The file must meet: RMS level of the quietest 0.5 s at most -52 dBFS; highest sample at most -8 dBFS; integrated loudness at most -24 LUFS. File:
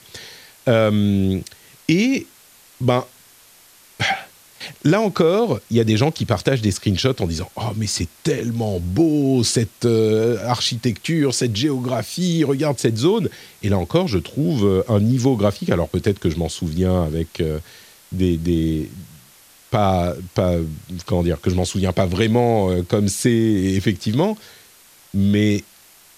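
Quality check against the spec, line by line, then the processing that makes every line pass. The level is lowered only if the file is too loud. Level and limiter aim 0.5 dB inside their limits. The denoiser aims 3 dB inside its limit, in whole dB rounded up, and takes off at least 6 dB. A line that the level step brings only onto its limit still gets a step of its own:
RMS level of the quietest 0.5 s -49 dBFS: fail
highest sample -3.0 dBFS: fail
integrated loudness -19.5 LUFS: fail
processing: gain -5 dB; limiter -8.5 dBFS

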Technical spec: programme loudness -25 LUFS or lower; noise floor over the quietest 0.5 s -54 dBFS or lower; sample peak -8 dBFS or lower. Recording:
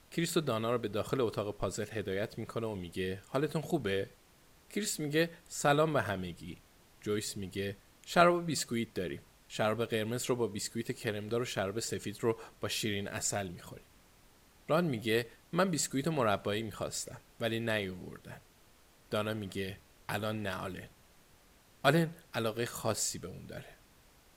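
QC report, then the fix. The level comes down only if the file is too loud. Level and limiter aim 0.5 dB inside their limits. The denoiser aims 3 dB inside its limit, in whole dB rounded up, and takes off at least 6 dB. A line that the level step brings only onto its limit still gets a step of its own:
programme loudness -34.0 LUFS: OK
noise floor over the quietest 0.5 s -63 dBFS: OK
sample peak -11.5 dBFS: OK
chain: none

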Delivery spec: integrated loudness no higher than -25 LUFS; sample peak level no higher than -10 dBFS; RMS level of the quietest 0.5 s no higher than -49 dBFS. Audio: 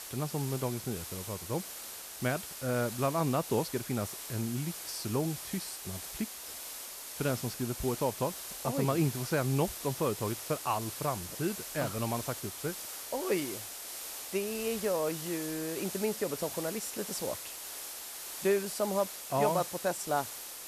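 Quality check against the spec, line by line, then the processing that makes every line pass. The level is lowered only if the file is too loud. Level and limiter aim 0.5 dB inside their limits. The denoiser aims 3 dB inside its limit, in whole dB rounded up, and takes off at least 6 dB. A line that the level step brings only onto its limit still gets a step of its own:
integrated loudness -34.0 LUFS: OK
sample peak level -16.0 dBFS: OK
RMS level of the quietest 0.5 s -44 dBFS: fail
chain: denoiser 8 dB, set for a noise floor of -44 dBFS

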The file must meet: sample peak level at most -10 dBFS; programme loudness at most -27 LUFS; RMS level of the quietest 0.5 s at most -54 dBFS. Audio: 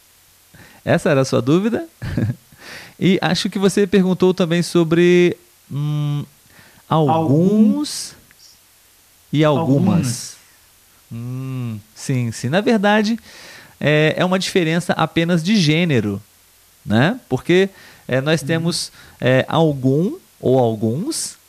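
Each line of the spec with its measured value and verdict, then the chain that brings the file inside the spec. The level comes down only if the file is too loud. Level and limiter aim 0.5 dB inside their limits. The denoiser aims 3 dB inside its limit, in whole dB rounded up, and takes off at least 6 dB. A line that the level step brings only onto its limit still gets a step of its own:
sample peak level -3.0 dBFS: fail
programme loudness -17.5 LUFS: fail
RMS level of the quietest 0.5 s -52 dBFS: fail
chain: gain -10 dB

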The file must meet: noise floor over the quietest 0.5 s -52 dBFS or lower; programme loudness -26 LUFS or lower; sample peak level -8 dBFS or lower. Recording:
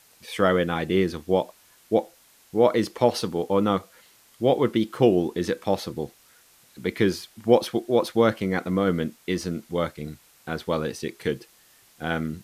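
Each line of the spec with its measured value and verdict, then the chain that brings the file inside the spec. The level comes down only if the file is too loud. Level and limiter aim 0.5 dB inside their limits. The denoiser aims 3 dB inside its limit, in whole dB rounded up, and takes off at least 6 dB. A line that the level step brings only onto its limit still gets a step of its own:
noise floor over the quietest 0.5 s -57 dBFS: OK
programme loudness -25.0 LUFS: fail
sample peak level -4.0 dBFS: fail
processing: gain -1.5 dB; limiter -8.5 dBFS

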